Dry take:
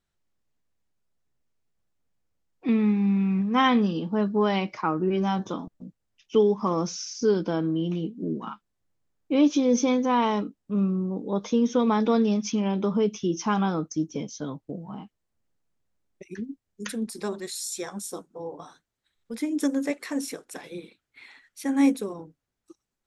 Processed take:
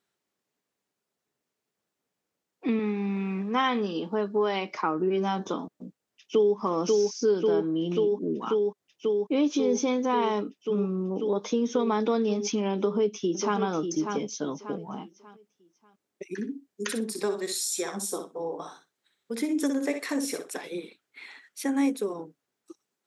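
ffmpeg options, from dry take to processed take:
ffmpeg -i in.wav -filter_complex "[0:a]asettb=1/sr,asplit=3[link_01][link_02][link_03];[link_01]atrim=end=2.794[link_04];[link_02]atrim=start=2.79:end=4.71,asetpts=PTS-STARTPTS,afade=type=in:duration=0.004:curve=qsin,afade=type=out:start_time=1.916:duration=0.004:curve=qsin,highpass=frequency=290:poles=1[link_05];[link_03]atrim=start=4.706[link_06];[link_04][link_05]acrossfade=duration=0.004:curve1=hsin:curve2=qsin[link_07];[link_07][link_06]acrossfade=duration=0.004:curve1=qsin:curve2=hsin,asplit=2[link_08][link_09];[link_09]afade=type=in:start_time=5.74:duration=0.01,afade=type=out:start_time=6.56:duration=0.01,aecho=0:1:540|1080|1620|2160|2700|3240|3780|4320|4860|5400|5940|6480:0.749894|0.63741|0.541799|0.460529|0.391449|0.332732|0.282822|0.240399|0.204339|0.173688|0.147635|0.12549[link_10];[link_08][link_10]amix=inputs=2:normalize=0,asplit=2[link_11][link_12];[link_12]afade=type=in:start_time=12.75:duration=0.01,afade=type=out:start_time=13.59:duration=0.01,aecho=0:1:590|1180|1770|2360:0.375837|0.112751|0.0338254|0.0101476[link_13];[link_11][link_13]amix=inputs=2:normalize=0,asettb=1/sr,asplit=3[link_14][link_15][link_16];[link_14]atrim=end=16.324[link_17];[link_15]atrim=start=16.32:end=20.49,asetpts=PTS-STARTPTS,afade=type=in:duration=0.004:curve=qsin,afade=type=out:start_time=4.166:duration=0.004:curve=qsin,aecho=1:1:61|122:0.422|0.0633,atrim=end_sample=183897[link_18];[link_16]atrim=start=20.486[link_19];[link_17][link_18]acrossfade=duration=0.004:curve1=hsin:curve2=qsin[link_20];[link_20][link_19]acrossfade=duration=0.004:curve1=qsin:curve2=hsin,highpass=230,equalizer=frequency=410:width=7.2:gain=5,acompressor=threshold=-30dB:ratio=2,volume=3.5dB" out.wav

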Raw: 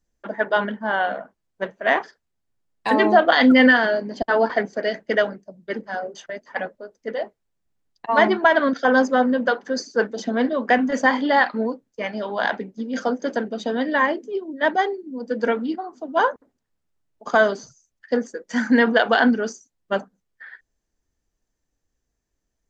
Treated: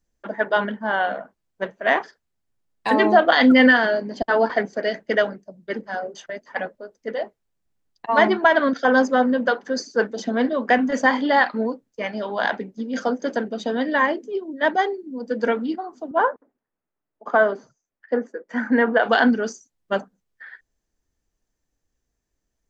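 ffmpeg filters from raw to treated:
ffmpeg -i in.wav -filter_complex "[0:a]asettb=1/sr,asplit=3[link_01][link_02][link_03];[link_01]atrim=end=16.114[link_04];[link_02]atrim=start=16.11:end=19.03,asetpts=PTS-STARTPTS,afade=type=in:duration=0.004:curve=qsin,afade=type=out:start_time=2.916:duration=0.004:curve=qsin,acrossover=split=210 2300:gain=0.224 1 0.1[link_05][link_06][link_07];[link_05][link_06][link_07]amix=inputs=3:normalize=0[link_08];[link_03]atrim=start=19.026[link_09];[link_04][link_08]acrossfade=duration=0.004:curve1=hsin:curve2=qsin[link_10];[link_10][link_09]acrossfade=duration=0.004:curve1=qsin:curve2=hsin" out.wav

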